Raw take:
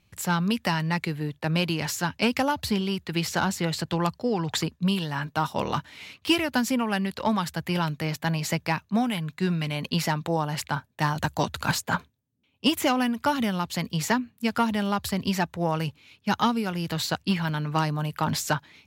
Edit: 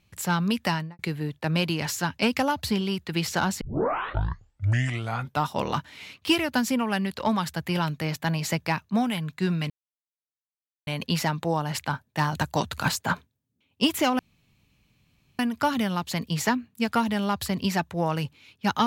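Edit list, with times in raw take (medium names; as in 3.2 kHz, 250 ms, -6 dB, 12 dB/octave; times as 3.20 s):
0.70–0.99 s: studio fade out
3.61 s: tape start 1.87 s
9.70 s: insert silence 1.17 s
13.02 s: insert room tone 1.20 s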